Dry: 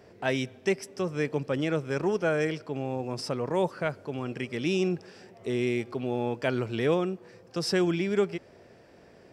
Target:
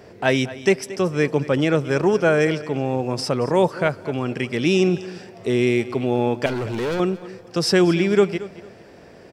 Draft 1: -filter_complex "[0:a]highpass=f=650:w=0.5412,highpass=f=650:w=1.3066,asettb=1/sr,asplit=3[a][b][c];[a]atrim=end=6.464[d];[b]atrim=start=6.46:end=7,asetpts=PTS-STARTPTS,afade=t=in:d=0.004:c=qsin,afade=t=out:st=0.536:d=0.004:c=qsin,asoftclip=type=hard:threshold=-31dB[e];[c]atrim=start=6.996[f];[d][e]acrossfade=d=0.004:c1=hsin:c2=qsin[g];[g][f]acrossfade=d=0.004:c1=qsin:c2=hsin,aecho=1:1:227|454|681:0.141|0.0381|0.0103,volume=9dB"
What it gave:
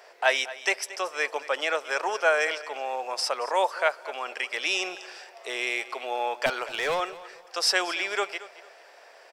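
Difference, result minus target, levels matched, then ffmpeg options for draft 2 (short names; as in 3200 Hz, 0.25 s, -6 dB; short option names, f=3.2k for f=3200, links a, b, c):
500 Hz band -3.5 dB
-filter_complex "[0:a]asettb=1/sr,asplit=3[a][b][c];[a]atrim=end=6.464[d];[b]atrim=start=6.46:end=7,asetpts=PTS-STARTPTS,afade=t=in:d=0.004:c=qsin,afade=t=out:st=0.536:d=0.004:c=qsin,asoftclip=type=hard:threshold=-31dB[e];[c]atrim=start=6.996[f];[d][e]acrossfade=d=0.004:c1=hsin:c2=qsin[g];[g][f]acrossfade=d=0.004:c1=qsin:c2=hsin,aecho=1:1:227|454|681:0.141|0.0381|0.0103,volume=9dB"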